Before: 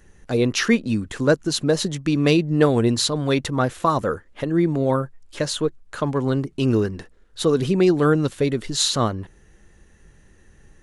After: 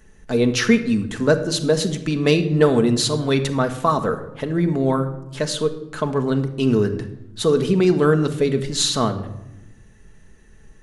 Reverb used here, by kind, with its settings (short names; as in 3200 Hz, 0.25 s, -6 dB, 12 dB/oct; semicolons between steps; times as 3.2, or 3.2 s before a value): shoebox room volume 3300 m³, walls furnished, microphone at 1.5 m